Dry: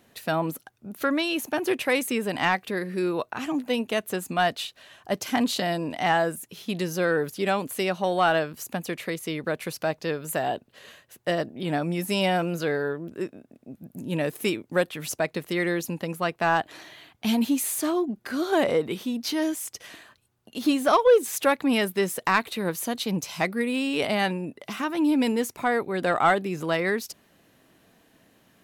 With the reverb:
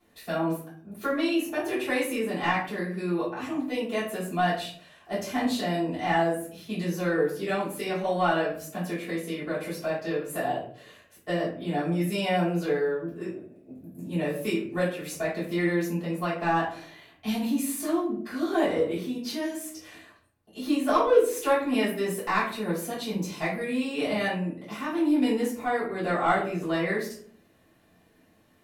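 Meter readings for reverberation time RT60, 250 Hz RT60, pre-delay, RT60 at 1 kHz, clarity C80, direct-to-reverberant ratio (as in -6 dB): 0.55 s, 0.80 s, 3 ms, 0.45 s, 10.0 dB, -12.5 dB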